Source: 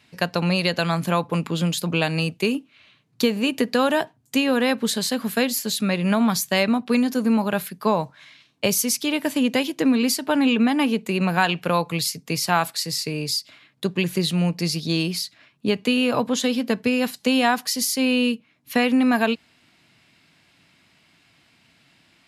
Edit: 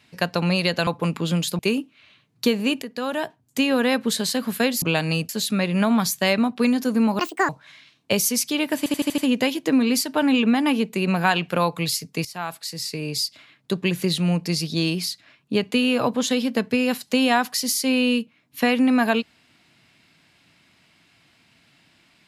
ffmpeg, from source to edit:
ffmpeg -i in.wav -filter_complex "[0:a]asplit=14[link_01][link_02][link_03][link_04][link_05][link_06][link_07][link_08][link_09][link_10][link_11][link_12][link_13][link_14];[link_01]atrim=end=0.872[link_15];[link_02]atrim=start=1.168:end=1.892[link_16];[link_03]atrim=start=2.358:end=3.59,asetpts=PTS-STARTPTS,afade=type=out:start_time=1.228:duration=0.004:curve=hsin:silence=0.199526[link_17];[link_04]atrim=start=3.59:end=5.592,asetpts=PTS-STARTPTS,afade=type=in:duration=0.83:silence=0.199526[link_18];[link_05]atrim=start=1.888:end=2.362[link_19];[link_06]atrim=start=5.588:end=7.494[link_20];[link_07]atrim=start=7.49:end=8.02,asetpts=PTS-STARTPTS,asetrate=78057,aresample=44100,atrim=end_sample=13205,asetpts=PTS-STARTPTS[link_21];[link_08]atrim=start=8.016:end=9.392[link_22];[link_09]atrim=start=9.308:end=9.392[link_23];[link_10]atrim=start=9.308:end=9.392[link_24];[link_11]atrim=start=9.308:end=9.392[link_25];[link_12]atrim=start=9.308:end=9.392[link_26];[link_13]atrim=start=9.308:end=12.38,asetpts=PTS-STARTPTS,afade=type=out:start_time=3.068:duration=0.004:curve=hsin:silence=0.158489[link_27];[link_14]atrim=start=12.38,asetpts=PTS-STARTPTS,afade=type=in:duration=0.99:silence=0.158489[link_28];[link_15][link_16]acrossfade=duration=0.004:curve1=hsin:curve2=hsin[link_29];[link_17][link_18]concat=n=2:v=0:a=1[link_30];[link_29][link_30]acrossfade=duration=0.004:curve1=hsin:curve2=hsin[link_31];[link_31][link_19]acrossfade=duration=0.004:curve1=hsin:curve2=hsin[link_32];[link_32][link_20]acrossfade=duration=0.004:curve1=hsin:curve2=hsin[link_33];[link_33][link_21]acrossfade=duration=0.004:curve1=hsin:curve2=hsin[link_34];[link_34][link_22]acrossfade=duration=0.004:curve1=hsin:curve2=hsin[link_35];[link_35][link_23]acrossfade=duration=0.004:curve1=hsin:curve2=hsin[link_36];[link_36][link_24]acrossfade=duration=0.004:curve1=hsin:curve2=hsin[link_37];[link_37][link_25]acrossfade=duration=0.004:curve1=hsin:curve2=hsin[link_38];[link_38][link_26]acrossfade=duration=0.004:curve1=hsin:curve2=hsin[link_39];[link_27][link_28]concat=n=2:v=0:a=1[link_40];[link_39][link_40]acrossfade=duration=0.004:curve1=hsin:curve2=hsin" out.wav

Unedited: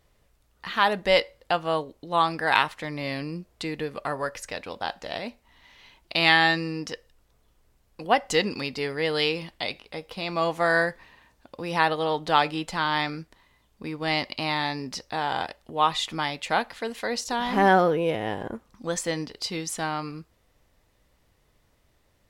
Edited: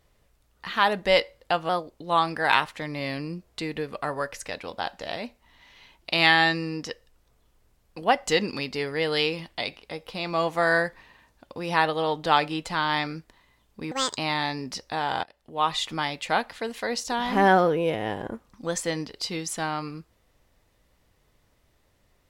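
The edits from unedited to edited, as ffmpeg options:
ffmpeg -i in.wav -filter_complex "[0:a]asplit=6[link_01][link_02][link_03][link_04][link_05][link_06];[link_01]atrim=end=1.694[link_07];[link_02]atrim=start=1.69:end=1.94,asetpts=PTS-STARTPTS,asetrate=49392,aresample=44100[link_08];[link_03]atrim=start=1.936:end=13.944[link_09];[link_04]atrim=start=13.94:end=14.38,asetpts=PTS-STARTPTS,asetrate=74529,aresample=44100[link_10];[link_05]atrim=start=14.376:end=15.44,asetpts=PTS-STARTPTS,afade=type=out:start_time=1.06:duration=0.004:curve=hsin:silence=0.0794328[link_11];[link_06]atrim=start=15.44,asetpts=PTS-STARTPTS,afade=type=in:duration=0.54:silence=0.0794328[link_12];[link_07][link_08]acrossfade=duration=0.004:curve1=hsin:curve2=hsin[link_13];[link_13][link_09]acrossfade=duration=0.004:curve1=hsin:curve2=hsin[link_14];[link_14][link_10]acrossfade=duration=0.004:curve1=hsin:curve2=hsin[link_15];[link_11][link_12]concat=n=2:v=0:a=1[link_16];[link_15][link_16]acrossfade=duration=0.004:curve1=hsin:curve2=hsin" out.wav

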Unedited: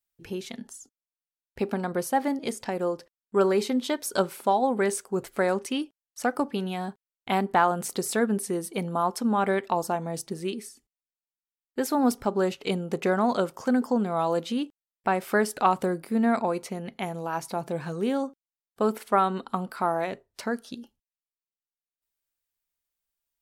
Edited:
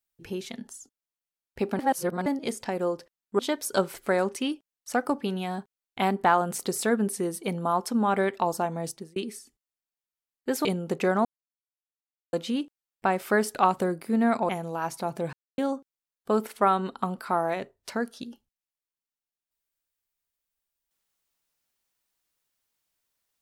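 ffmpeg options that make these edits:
ffmpeg -i in.wav -filter_complex "[0:a]asplit=12[link_01][link_02][link_03][link_04][link_05][link_06][link_07][link_08][link_09][link_10][link_11][link_12];[link_01]atrim=end=1.792[link_13];[link_02]atrim=start=1.788:end=2.262,asetpts=PTS-STARTPTS,areverse[link_14];[link_03]atrim=start=2.258:end=3.392[link_15];[link_04]atrim=start=3.798:end=4.352[link_16];[link_05]atrim=start=5.238:end=10.46,asetpts=PTS-STARTPTS,afade=type=out:start_time=4.922:duration=0.3[link_17];[link_06]atrim=start=10.46:end=11.952,asetpts=PTS-STARTPTS,afade=type=in:duration=0.004:curve=hsin[link_18];[link_07]atrim=start=12.668:end=13.27,asetpts=PTS-STARTPTS,afade=type=out:start_time=0.598:duration=0.004:curve=hsin[link_19];[link_08]atrim=start=13.27:end=14.35,asetpts=PTS-STARTPTS,volume=0[link_20];[link_09]atrim=start=14.35:end=16.512,asetpts=PTS-STARTPTS,afade=type=in:duration=0.004:curve=hsin[link_21];[link_10]atrim=start=16.998:end=17.84,asetpts=PTS-STARTPTS,afade=type=out:start_time=0.838:duration=0.004:curve=hsin[link_22];[link_11]atrim=start=17.84:end=18.09,asetpts=PTS-STARTPTS,volume=0[link_23];[link_12]atrim=start=18.09,asetpts=PTS-STARTPTS,afade=type=in:duration=0.004:curve=hsin[link_24];[link_13][link_14]acrossfade=duration=0.004:curve1=hsin:curve2=hsin[link_25];[link_25][link_15]acrossfade=duration=0.004:curve1=hsin:curve2=hsin[link_26];[link_26][link_16]acrossfade=duration=0.004:curve1=hsin:curve2=hsin[link_27];[link_17][link_18]concat=n=2:v=0:a=1[link_28];[link_27][link_28]acrossfade=duration=0.004:curve1=hsin:curve2=hsin[link_29];[link_19][link_20][link_21]concat=n=3:v=0:a=1[link_30];[link_29][link_30]acrossfade=duration=0.004:curve1=hsin:curve2=hsin[link_31];[link_22][link_23][link_24]concat=n=3:v=0:a=1[link_32];[link_31][link_32]acrossfade=duration=0.004:curve1=hsin:curve2=hsin" out.wav

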